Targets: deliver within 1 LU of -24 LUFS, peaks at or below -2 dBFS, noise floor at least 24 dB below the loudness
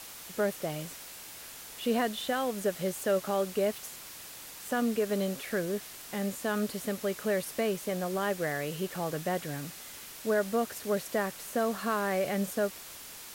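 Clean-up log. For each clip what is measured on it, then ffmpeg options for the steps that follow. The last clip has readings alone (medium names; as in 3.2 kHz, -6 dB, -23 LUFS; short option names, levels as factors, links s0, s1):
noise floor -46 dBFS; noise floor target -56 dBFS; loudness -32.0 LUFS; peak level -17.0 dBFS; loudness target -24.0 LUFS
-> -af "afftdn=nr=10:nf=-46"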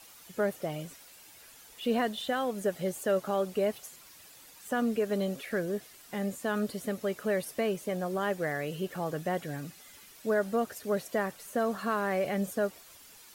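noise floor -54 dBFS; noise floor target -56 dBFS
-> -af "afftdn=nr=6:nf=-54"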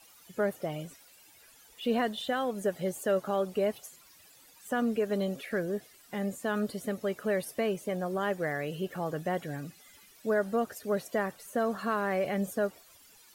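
noise floor -58 dBFS; loudness -32.5 LUFS; peak level -17.0 dBFS; loudness target -24.0 LUFS
-> -af "volume=2.66"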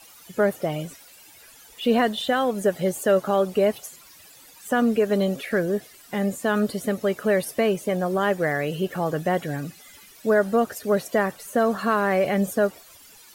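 loudness -24.0 LUFS; peak level -8.5 dBFS; noise floor -50 dBFS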